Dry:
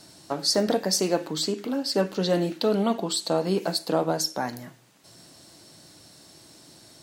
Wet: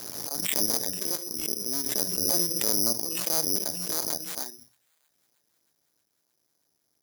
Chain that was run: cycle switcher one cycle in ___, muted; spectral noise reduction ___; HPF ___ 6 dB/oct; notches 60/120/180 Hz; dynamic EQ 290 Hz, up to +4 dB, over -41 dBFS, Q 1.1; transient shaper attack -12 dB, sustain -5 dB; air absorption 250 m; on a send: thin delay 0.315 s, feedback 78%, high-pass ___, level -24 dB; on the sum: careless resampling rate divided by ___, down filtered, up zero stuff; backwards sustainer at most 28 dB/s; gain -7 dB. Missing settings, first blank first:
2, 16 dB, 120 Hz, 2400 Hz, 8×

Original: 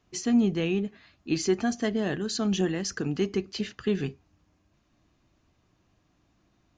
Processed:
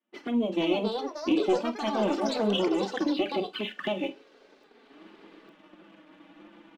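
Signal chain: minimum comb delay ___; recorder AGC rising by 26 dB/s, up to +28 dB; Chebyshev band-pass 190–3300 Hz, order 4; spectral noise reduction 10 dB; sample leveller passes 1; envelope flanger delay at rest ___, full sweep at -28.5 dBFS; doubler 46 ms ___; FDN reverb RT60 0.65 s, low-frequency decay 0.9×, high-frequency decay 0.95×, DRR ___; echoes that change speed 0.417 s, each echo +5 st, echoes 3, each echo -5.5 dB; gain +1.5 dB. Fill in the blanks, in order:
3.4 ms, 8.7 ms, -14 dB, 19.5 dB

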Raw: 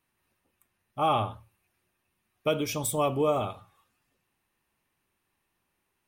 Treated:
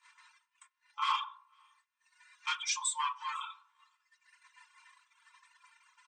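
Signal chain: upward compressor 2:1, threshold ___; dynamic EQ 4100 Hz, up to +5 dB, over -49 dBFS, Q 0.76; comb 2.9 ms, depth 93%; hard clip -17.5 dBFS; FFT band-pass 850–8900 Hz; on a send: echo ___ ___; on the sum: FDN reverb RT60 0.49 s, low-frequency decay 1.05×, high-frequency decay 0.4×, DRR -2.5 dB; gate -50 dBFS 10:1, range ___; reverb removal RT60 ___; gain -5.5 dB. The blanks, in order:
-27 dBFS, 0.501 s, -23 dB, -18 dB, 1.9 s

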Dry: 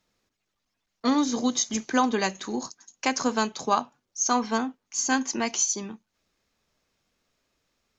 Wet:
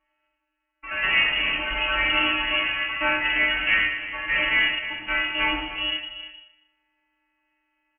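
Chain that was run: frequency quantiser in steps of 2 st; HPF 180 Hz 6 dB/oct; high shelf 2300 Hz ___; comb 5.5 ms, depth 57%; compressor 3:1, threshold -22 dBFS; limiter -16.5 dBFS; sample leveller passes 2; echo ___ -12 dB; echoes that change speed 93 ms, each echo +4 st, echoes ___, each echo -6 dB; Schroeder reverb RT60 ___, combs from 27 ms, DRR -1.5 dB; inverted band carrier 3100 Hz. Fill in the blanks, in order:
+8 dB, 0.31 s, 2, 0.76 s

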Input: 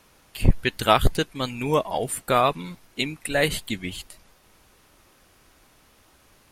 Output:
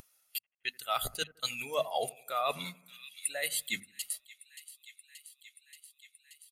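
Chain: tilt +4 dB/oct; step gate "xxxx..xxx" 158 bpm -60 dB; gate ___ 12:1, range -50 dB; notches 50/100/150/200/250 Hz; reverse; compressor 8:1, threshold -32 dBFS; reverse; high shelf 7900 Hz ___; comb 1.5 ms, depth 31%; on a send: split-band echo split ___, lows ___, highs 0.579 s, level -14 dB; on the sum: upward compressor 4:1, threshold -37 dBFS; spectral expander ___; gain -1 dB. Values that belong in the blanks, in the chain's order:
-37 dBFS, +2.5 dB, 1900 Hz, 83 ms, 1.5:1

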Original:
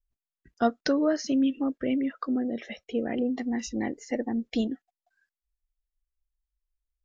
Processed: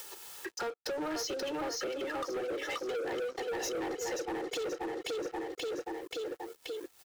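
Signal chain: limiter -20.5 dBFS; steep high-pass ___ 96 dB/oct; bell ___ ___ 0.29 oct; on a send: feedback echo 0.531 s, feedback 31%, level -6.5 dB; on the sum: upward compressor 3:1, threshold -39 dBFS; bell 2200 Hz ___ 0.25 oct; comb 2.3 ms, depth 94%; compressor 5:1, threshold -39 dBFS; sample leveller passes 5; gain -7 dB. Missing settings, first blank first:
320 Hz, 950 Hz, +4 dB, -5.5 dB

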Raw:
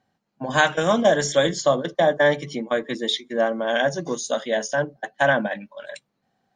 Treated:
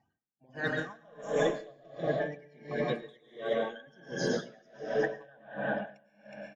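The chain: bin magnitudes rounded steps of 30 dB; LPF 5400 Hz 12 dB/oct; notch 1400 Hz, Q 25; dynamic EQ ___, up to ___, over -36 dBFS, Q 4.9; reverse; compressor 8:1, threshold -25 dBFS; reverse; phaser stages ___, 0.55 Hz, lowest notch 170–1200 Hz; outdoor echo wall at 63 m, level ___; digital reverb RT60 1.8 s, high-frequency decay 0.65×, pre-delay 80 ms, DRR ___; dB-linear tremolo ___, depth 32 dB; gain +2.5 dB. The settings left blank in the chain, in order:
460 Hz, +6 dB, 8, -7 dB, 0 dB, 1.4 Hz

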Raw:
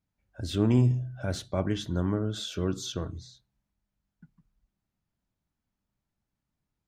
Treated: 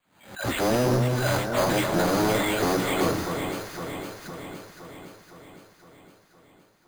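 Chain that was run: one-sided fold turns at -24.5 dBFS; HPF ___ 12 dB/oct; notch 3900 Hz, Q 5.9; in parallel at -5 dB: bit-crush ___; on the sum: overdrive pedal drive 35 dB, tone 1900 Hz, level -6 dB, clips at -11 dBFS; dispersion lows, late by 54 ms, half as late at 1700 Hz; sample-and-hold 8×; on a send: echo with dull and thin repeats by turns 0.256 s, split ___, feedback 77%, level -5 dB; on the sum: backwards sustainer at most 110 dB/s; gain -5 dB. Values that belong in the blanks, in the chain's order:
120 Hz, 7-bit, 1500 Hz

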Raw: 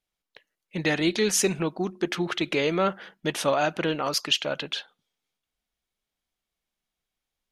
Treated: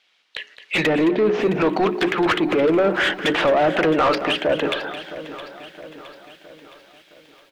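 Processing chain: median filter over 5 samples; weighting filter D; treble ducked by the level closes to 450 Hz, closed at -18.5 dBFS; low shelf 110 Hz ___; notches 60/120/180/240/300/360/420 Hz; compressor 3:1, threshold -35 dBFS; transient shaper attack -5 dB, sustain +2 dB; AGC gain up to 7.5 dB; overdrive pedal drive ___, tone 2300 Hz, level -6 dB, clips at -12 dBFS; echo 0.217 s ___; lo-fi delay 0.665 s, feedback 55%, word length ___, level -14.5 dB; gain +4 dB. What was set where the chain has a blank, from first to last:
-3.5 dB, 24 dB, -13 dB, 9-bit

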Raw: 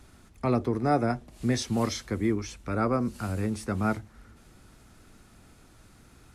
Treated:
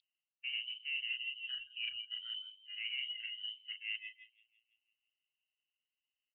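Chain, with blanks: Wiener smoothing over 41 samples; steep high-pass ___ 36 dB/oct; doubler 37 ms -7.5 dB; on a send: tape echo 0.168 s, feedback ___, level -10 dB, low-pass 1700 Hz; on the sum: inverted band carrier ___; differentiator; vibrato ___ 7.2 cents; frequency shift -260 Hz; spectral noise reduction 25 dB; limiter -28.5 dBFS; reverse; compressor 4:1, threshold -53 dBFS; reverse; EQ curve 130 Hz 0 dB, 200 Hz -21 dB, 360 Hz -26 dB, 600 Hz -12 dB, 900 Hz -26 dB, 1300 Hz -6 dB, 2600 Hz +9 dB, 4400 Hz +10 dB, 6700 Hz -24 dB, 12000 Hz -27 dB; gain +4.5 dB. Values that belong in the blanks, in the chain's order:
540 Hz, 67%, 3700 Hz, 8.1 Hz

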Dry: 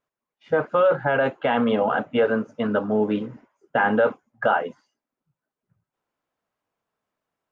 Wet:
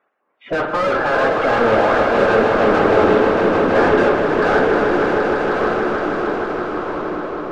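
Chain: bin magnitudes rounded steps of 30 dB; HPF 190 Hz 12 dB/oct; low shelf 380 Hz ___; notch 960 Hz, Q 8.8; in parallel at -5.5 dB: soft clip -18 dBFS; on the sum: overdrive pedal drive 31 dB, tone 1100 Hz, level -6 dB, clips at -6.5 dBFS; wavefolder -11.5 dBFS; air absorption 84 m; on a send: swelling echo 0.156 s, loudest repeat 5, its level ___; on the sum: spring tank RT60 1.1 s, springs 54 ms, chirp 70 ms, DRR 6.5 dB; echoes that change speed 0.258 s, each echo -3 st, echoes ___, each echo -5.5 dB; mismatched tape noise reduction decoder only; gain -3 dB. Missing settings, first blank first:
-4 dB, -8.5 dB, 2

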